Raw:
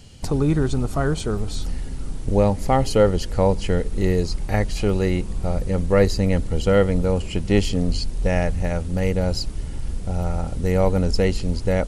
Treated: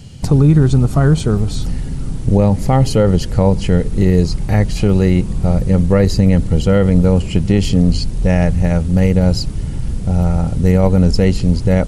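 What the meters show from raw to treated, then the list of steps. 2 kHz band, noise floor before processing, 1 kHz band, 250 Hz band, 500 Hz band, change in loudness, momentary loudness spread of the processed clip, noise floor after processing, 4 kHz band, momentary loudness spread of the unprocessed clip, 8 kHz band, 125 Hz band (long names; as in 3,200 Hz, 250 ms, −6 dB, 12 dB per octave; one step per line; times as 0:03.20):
+2.5 dB, −30 dBFS, +2.5 dB, +9.5 dB, +3.5 dB, +7.5 dB, 7 LU, −23 dBFS, +4.0 dB, 9 LU, +4.5 dB, +10.5 dB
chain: parametric band 140 Hz +10 dB 1.5 octaves
boost into a limiter +5.5 dB
level −1 dB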